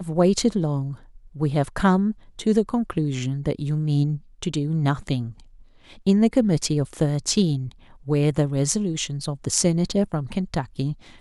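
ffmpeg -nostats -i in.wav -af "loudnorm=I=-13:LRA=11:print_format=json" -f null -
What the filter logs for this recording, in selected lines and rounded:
"input_i" : "-23.6",
"input_tp" : "-2.0",
"input_lra" : "1.5",
"input_thresh" : "-33.8",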